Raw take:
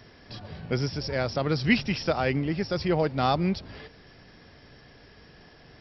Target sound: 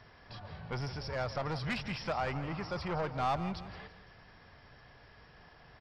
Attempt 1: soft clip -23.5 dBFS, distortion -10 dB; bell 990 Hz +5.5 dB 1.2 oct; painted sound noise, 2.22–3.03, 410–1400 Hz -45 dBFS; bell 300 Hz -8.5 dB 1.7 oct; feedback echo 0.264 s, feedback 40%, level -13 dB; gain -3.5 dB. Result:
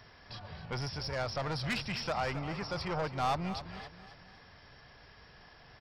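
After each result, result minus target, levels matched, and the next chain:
echo 97 ms late; 4000 Hz band +4.0 dB
soft clip -23.5 dBFS, distortion -10 dB; bell 990 Hz +5.5 dB 1.2 oct; painted sound noise, 2.22–3.03, 410–1400 Hz -45 dBFS; bell 300 Hz -8.5 dB 1.7 oct; feedback echo 0.167 s, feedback 40%, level -13 dB; gain -3.5 dB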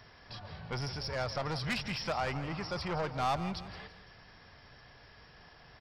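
4000 Hz band +4.0 dB
soft clip -23.5 dBFS, distortion -10 dB; LPF 2900 Hz 6 dB/oct; bell 990 Hz +5.5 dB 1.2 oct; painted sound noise, 2.22–3.03, 410–1400 Hz -45 dBFS; bell 300 Hz -8.5 dB 1.7 oct; feedback echo 0.167 s, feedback 40%, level -13 dB; gain -3.5 dB

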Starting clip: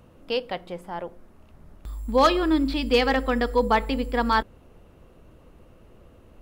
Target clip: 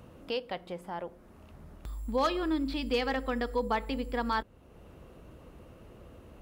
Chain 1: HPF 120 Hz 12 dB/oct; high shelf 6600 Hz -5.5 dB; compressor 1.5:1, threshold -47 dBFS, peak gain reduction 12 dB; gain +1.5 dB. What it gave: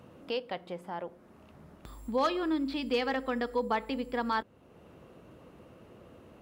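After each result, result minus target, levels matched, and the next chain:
125 Hz band -6.5 dB; 8000 Hz band -2.5 dB
HPF 37 Hz 12 dB/oct; high shelf 6600 Hz -5.5 dB; compressor 1.5:1, threshold -47 dBFS, peak gain reduction 12 dB; gain +1.5 dB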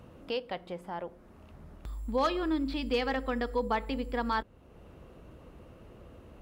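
8000 Hz band -3.0 dB
HPF 37 Hz 12 dB/oct; compressor 1.5:1, threshold -47 dBFS, peak gain reduction 12 dB; gain +1.5 dB

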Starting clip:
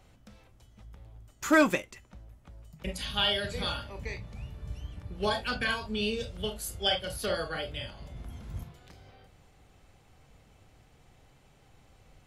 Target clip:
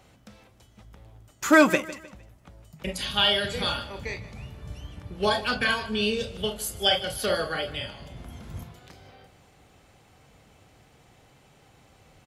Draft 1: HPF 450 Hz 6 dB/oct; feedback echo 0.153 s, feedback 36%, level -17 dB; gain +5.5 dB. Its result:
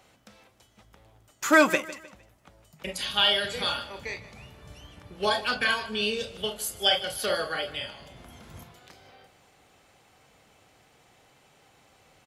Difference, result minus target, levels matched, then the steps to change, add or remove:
125 Hz band -7.5 dB
change: HPF 120 Hz 6 dB/oct

